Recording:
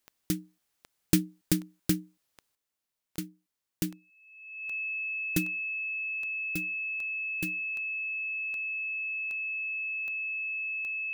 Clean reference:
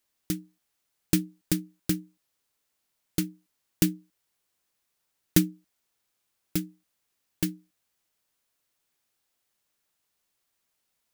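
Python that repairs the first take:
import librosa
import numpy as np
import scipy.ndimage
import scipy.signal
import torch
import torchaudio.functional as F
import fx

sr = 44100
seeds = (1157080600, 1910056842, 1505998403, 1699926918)

y = fx.fix_declick_ar(x, sr, threshold=10.0)
y = fx.notch(y, sr, hz=2600.0, q=30.0)
y = fx.fix_level(y, sr, at_s=2.55, step_db=8.5)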